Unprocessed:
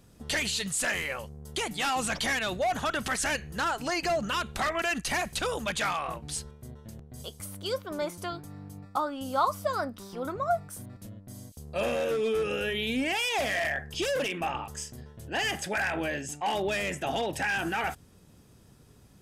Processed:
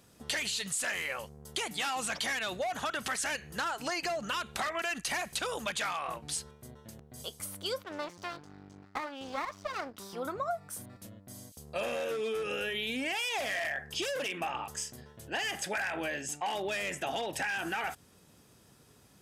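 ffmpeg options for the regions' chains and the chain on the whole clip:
-filter_complex "[0:a]asettb=1/sr,asplit=3[a][b][c];[a]atrim=end=7.834[d];[b]atrim=start=7.83:end=9.98,asetpts=PTS-STARTPTS,afade=t=in:d=0.004:c=qsin,afade=t=out:st=2.146:d=0.004:c=qsin,lowpass=f=6.3k:w=0.5412,lowpass=f=6.3k:w=1.3066,aeval=exprs='max(val(0),0)':c=same[e];[c]atrim=start=9.976[f];[d][e]acrossfade=d=0.004:c1=hsin:c2=qsin[g];[g][f]acrossfade=d=0.004:c1=qsin:c2=hsin,lowshelf=f=410:g=-7,acompressor=threshold=-32dB:ratio=6,highpass=f=93:p=1,volume=1.5dB"

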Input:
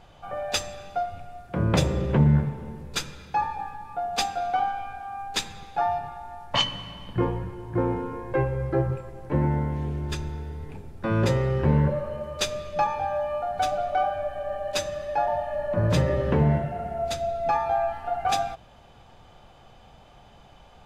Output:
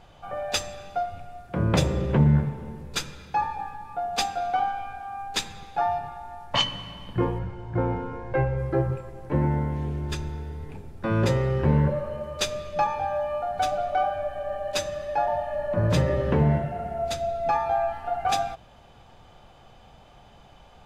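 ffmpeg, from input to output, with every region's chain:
-filter_complex "[0:a]asettb=1/sr,asplit=3[a][b][c];[a]atrim=end=7.394[d];[b]atrim=start=7.39:end=8.58,asetpts=PTS-STARTPTS,afade=t=in:d=0.004:c=qsin,afade=t=out:st=1.186:d=0.004:c=qsin,lowpass=5.6k,aecho=1:1:1.4:0.37,atrim=end_sample=52479[e];[c]atrim=start=8.576[f];[d][e]acrossfade=d=0.004:c1=hsin:c2=qsin[g];[g][f]acrossfade=d=0.004:c1=qsin:c2=hsin"

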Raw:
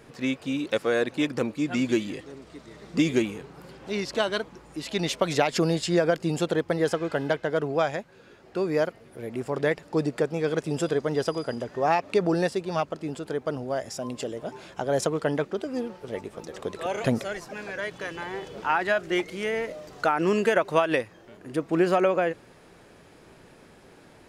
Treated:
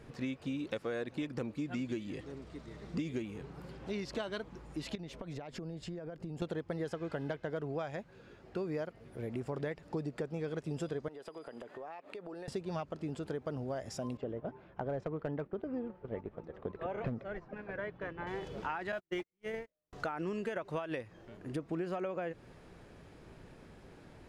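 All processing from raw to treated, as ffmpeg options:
-filter_complex "[0:a]asettb=1/sr,asplit=3[a][b][c];[a]atrim=end=4.954[d];[b]atrim=start=4.95:end=6.42,asetpts=PTS-STARTPTS,afade=t=in:d=0.004:c=qsin,afade=t=out:st=1.466:d=0.004:c=qsin,lowpass=f=1k:p=1,aemphasis=mode=production:type=50kf,acompressor=threshold=-36dB:ratio=12:attack=3.2:release=140:knee=1:detection=peak[e];[c]atrim=start=6.416[f];[d][e]acrossfade=d=0.004:c1=hsin:c2=qsin[g];[g][f]acrossfade=d=0.004:c1=qsin:c2=hsin,asettb=1/sr,asplit=3[h][i][j];[h]atrim=end=11.084[k];[i]atrim=start=11.08:end=12.48,asetpts=PTS-STARTPTS,afade=t=in:d=0.004:c=qsin,afade=t=out:st=1.396:d=0.004:c=qsin,highpass=370,equalizer=f=5.7k:t=o:w=0.52:g=-11,acompressor=threshold=-38dB:ratio=8:attack=3.2:release=140:knee=1:detection=peak[l];[j]atrim=start=12.476[m];[k][l]acrossfade=d=0.004:c1=hsin:c2=qsin[n];[n][m]acrossfade=d=0.004:c1=qsin:c2=hsin,asettb=1/sr,asplit=3[o][p][q];[o]atrim=end=14.174[r];[p]atrim=start=14.17:end=18.27,asetpts=PTS-STARTPTS,afade=t=in:d=0.004:c=qsin,afade=t=out:st=4.096:d=0.004:c=qsin,lowpass=1.8k,agate=range=-7dB:threshold=-38dB:ratio=16:release=100:detection=peak,volume=17dB,asoftclip=hard,volume=-17dB[s];[q]atrim=start=18.266[t];[r][s]acrossfade=d=0.004:c1=hsin:c2=qsin[u];[u][t]acrossfade=d=0.004:c1=qsin:c2=hsin,asettb=1/sr,asplit=3[v][w][x];[v]atrim=end=18.924[y];[w]atrim=start=18.92:end=19.93,asetpts=PTS-STARTPTS,afade=t=in:d=0.004:c=qsin,afade=t=out:st=1.006:d=0.004:c=qsin,aeval=exprs='val(0)+0.5*0.0112*sgn(val(0))':c=same,agate=range=-51dB:threshold=-26dB:ratio=16:release=100:detection=peak[z];[x]atrim=start=19.926[aa];[y][z]acrossfade=d=0.004:c1=hsin:c2=qsin[ab];[ab][aa]acrossfade=d=0.004:c1=qsin:c2=hsin,lowshelf=f=150:g=11,acompressor=threshold=-29dB:ratio=6,highshelf=f=6.7k:g=-7,volume=-5.5dB"

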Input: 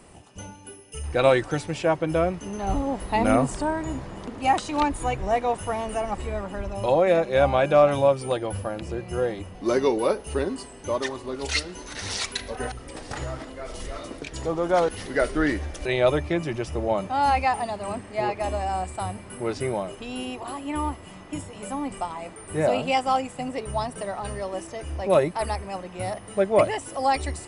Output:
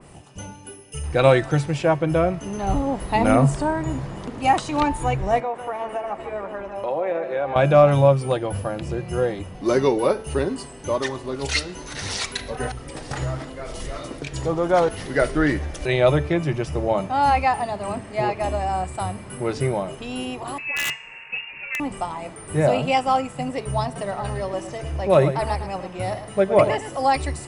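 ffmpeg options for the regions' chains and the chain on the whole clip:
-filter_complex "[0:a]asettb=1/sr,asplit=3[a][b][c];[a]atrim=end=5.404[d];[b]atrim=start=5.4:end=7.56,asetpts=PTS-STARTPTS,afade=t=in:d=0.004:c=qsin,afade=t=out:st=2.156:d=0.004:c=qsin,acrossover=split=270 2600:gain=0.1 1 0.178[e][f][g];[e][f][g]amix=inputs=3:normalize=0,acompressor=threshold=-27dB:ratio=2.5:attack=3.2:release=140:knee=1:detection=peak,aecho=1:1:149:0.335,atrim=end_sample=95256[h];[c]atrim=start=7.556[i];[d][h]acrossfade=d=0.004:c1=hsin:c2=qsin[j];[j][i]acrossfade=d=0.004:c1=qsin:c2=hsin,asettb=1/sr,asplit=3[k][l][m];[k]atrim=end=20.584[n];[l]atrim=start=20.58:end=21.8,asetpts=PTS-STARTPTS,afade=t=in:d=0.004:c=qsin,afade=t=out:st=1.216:d=0.004:c=qsin,lowpass=f=2.5k:t=q:w=0.5098,lowpass=f=2.5k:t=q:w=0.6013,lowpass=f=2.5k:t=q:w=0.9,lowpass=f=2.5k:t=q:w=2.563,afreqshift=-2900,aeval=exprs='(mod(8.91*val(0)+1,2)-1)/8.91':c=same[o];[m]atrim=start=21.796[p];[n][o]acrossfade=d=0.004:c1=hsin:c2=qsin[q];[q][p]acrossfade=d=0.004:c1=qsin:c2=hsin,asettb=1/sr,asplit=3[r][s][t];[r]atrim=end=23.854[u];[s]atrim=start=23.85:end=27.07,asetpts=PTS-STARTPTS,afade=t=in:d=0.004:c=qsin,afade=t=out:st=3.216:d=0.004:c=qsin,lowpass=8.4k,aecho=1:1:109:0.299,atrim=end_sample=142002[v];[t]atrim=start=27.066[w];[u][v]acrossfade=d=0.004:c1=hsin:c2=qsin[x];[x][w]acrossfade=d=0.004:c1=qsin:c2=hsin,equalizer=f=140:w=6.7:g=12,bandreject=f=221.1:t=h:w=4,bandreject=f=442.2:t=h:w=4,bandreject=f=663.3:t=h:w=4,bandreject=f=884.4:t=h:w=4,bandreject=f=1.1055k:t=h:w=4,bandreject=f=1.3266k:t=h:w=4,bandreject=f=1.5477k:t=h:w=4,bandreject=f=1.7688k:t=h:w=4,bandreject=f=1.9899k:t=h:w=4,bandreject=f=2.211k:t=h:w=4,bandreject=f=2.4321k:t=h:w=4,bandreject=f=2.6532k:t=h:w=4,bandreject=f=2.8743k:t=h:w=4,bandreject=f=3.0954k:t=h:w=4,bandreject=f=3.3165k:t=h:w=4,bandreject=f=3.5376k:t=h:w=4,bandreject=f=3.7587k:t=h:w=4,bandreject=f=3.9798k:t=h:w=4,bandreject=f=4.2009k:t=h:w=4,bandreject=f=4.422k:t=h:w=4,bandreject=f=4.6431k:t=h:w=4,bandreject=f=4.8642k:t=h:w=4,bandreject=f=5.0853k:t=h:w=4,bandreject=f=5.3064k:t=h:w=4,bandreject=f=5.5275k:t=h:w=4,bandreject=f=5.7486k:t=h:w=4,bandreject=f=5.9697k:t=h:w=4,bandreject=f=6.1908k:t=h:w=4,bandreject=f=6.4119k:t=h:w=4,bandreject=f=6.633k:t=h:w=4,bandreject=f=6.8541k:t=h:w=4,bandreject=f=7.0752k:t=h:w=4,bandreject=f=7.2963k:t=h:w=4,bandreject=f=7.5174k:t=h:w=4,bandreject=f=7.7385k:t=h:w=4,bandreject=f=7.9596k:t=h:w=4,bandreject=f=8.1807k:t=h:w=4,bandreject=f=8.4018k:t=h:w=4,adynamicequalizer=threshold=0.0112:dfrequency=2900:dqfactor=0.7:tfrequency=2900:tqfactor=0.7:attack=5:release=100:ratio=0.375:range=2:mode=cutabove:tftype=highshelf,volume=3dB"

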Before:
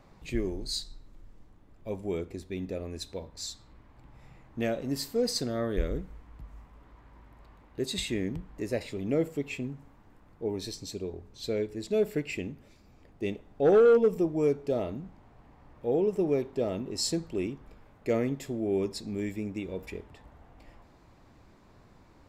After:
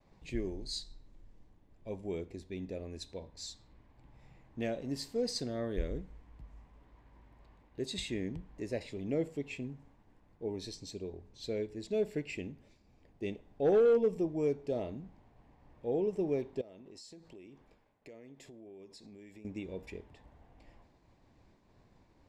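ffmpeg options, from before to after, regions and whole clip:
-filter_complex "[0:a]asettb=1/sr,asplit=3[a][b][c];[a]atrim=end=16.614[d];[b]atrim=start=16.61:end=19.45,asetpts=PTS-STARTPTS,afade=t=in:d=0.004:c=qsin,afade=t=out:st=2.836:d=0.004:c=qsin,lowshelf=f=180:g=-10,acompressor=threshold=-44dB:ratio=6:attack=3.2:release=140:knee=1:detection=peak[e];[c]atrim=start=19.446[f];[d][e]acrossfade=d=0.004:c1=hsin:c2=qsin[g];[g][f]acrossfade=d=0.004:c1=qsin:c2=hsin,lowpass=8.3k,equalizer=f=1.3k:t=o:w=0.38:g=-7.5,agate=range=-33dB:threshold=-54dB:ratio=3:detection=peak,volume=-5.5dB"

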